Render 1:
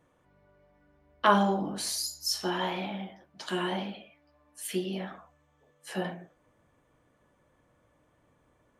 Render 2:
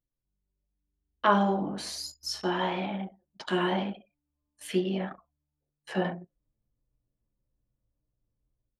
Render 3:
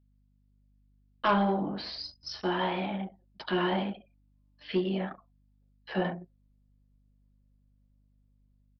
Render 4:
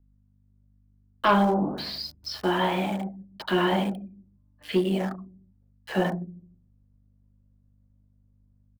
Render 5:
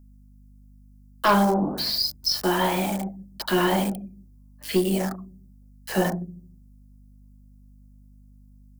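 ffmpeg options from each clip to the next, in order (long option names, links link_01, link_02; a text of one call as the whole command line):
ffmpeg -i in.wav -af "anlmdn=0.158,dynaudnorm=framelen=860:gausssize=3:maxgain=8dB,aemphasis=mode=reproduction:type=50fm,volume=-4dB" out.wav
ffmpeg -i in.wav -af "aresample=11025,asoftclip=type=tanh:threshold=-17dB,aresample=44100,aeval=exprs='val(0)+0.000562*(sin(2*PI*50*n/s)+sin(2*PI*2*50*n/s)/2+sin(2*PI*3*50*n/s)/3+sin(2*PI*4*50*n/s)/4+sin(2*PI*5*50*n/s)/5)':channel_layout=same" out.wav
ffmpeg -i in.wav -filter_complex "[0:a]acrossover=split=270|1700[link_01][link_02][link_03];[link_01]aecho=1:1:149|298|447:0.376|0.0977|0.0254[link_04];[link_03]aeval=exprs='val(0)*gte(abs(val(0)),0.00376)':channel_layout=same[link_05];[link_04][link_02][link_05]amix=inputs=3:normalize=0,volume=5dB" out.wav
ffmpeg -i in.wav -filter_complex "[0:a]acrossover=split=230[link_01][link_02];[link_02]aexciter=amount=2.9:drive=8.2:freq=4600[link_03];[link_01][link_03]amix=inputs=2:normalize=0,aeval=exprs='val(0)+0.00251*(sin(2*PI*50*n/s)+sin(2*PI*2*50*n/s)/2+sin(2*PI*3*50*n/s)/3+sin(2*PI*4*50*n/s)/4+sin(2*PI*5*50*n/s)/5)':channel_layout=same,aeval=exprs='(tanh(2*val(0)+0.3)-tanh(0.3))/2':channel_layout=same,volume=2.5dB" out.wav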